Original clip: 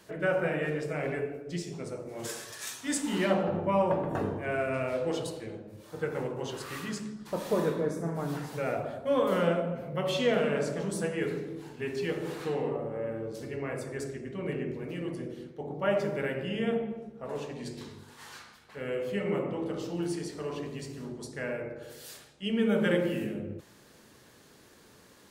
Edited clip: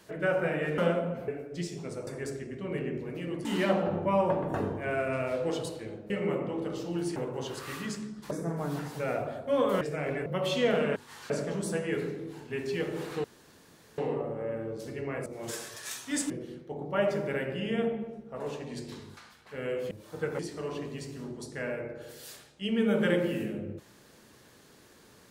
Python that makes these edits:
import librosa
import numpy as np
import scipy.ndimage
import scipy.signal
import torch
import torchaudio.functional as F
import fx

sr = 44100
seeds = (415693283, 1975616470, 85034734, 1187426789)

y = fx.edit(x, sr, fx.swap(start_s=0.78, length_s=0.45, other_s=9.39, other_length_s=0.5),
    fx.swap(start_s=2.02, length_s=1.04, other_s=13.81, other_length_s=1.38),
    fx.swap(start_s=5.71, length_s=0.48, other_s=19.14, other_length_s=1.06),
    fx.cut(start_s=7.34, length_s=0.55),
    fx.insert_room_tone(at_s=12.53, length_s=0.74),
    fx.move(start_s=18.06, length_s=0.34, to_s=10.59), tone=tone)